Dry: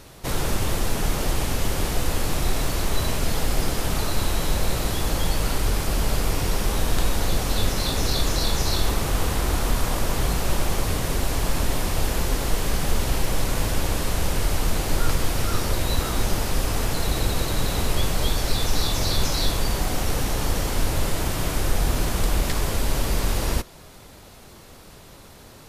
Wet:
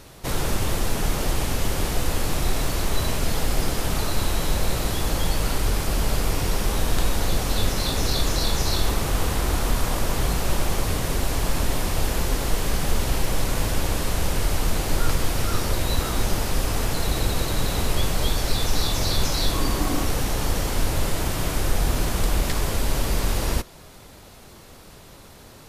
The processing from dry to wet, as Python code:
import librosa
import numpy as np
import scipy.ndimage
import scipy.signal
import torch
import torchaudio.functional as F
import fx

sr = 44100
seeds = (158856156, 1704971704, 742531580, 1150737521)

y = fx.small_body(x, sr, hz=(290.0, 1100.0), ring_ms=45, db=10, at=(19.53, 20.07))